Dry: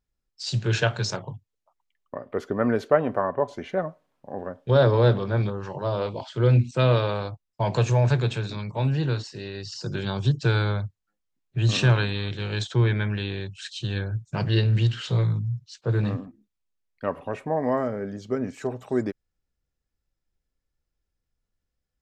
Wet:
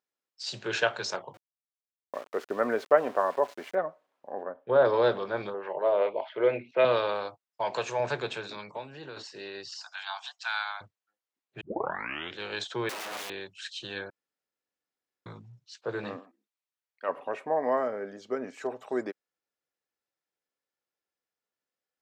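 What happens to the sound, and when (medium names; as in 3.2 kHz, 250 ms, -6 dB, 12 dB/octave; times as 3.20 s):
1.34–3.75 s: small samples zeroed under -41 dBFS
4.43–4.85 s: low-pass 1.8 kHz
5.54–6.85 s: cabinet simulation 180–3000 Hz, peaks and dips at 230 Hz -4 dB, 430 Hz +5 dB, 620 Hz +7 dB, 1.3 kHz -4 dB, 2.1 kHz +8 dB
7.48–8.00 s: bass shelf 480 Hz -6 dB
8.68–9.17 s: compression, threshold -29 dBFS
9.80–10.81 s: steep high-pass 690 Hz 96 dB/octave
11.61 s: tape start 0.76 s
12.89–13.30 s: integer overflow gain 29.5 dB
14.10–15.26 s: room tone
16.19–17.09 s: high-pass 590 Hz 6 dB/octave
whole clip: high-pass 450 Hz 12 dB/octave; treble shelf 4.7 kHz -7.5 dB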